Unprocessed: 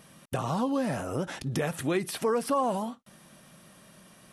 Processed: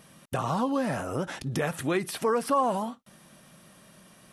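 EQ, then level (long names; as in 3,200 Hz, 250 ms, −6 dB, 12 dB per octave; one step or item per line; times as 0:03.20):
dynamic equaliser 1,300 Hz, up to +4 dB, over −39 dBFS, Q 0.88
0.0 dB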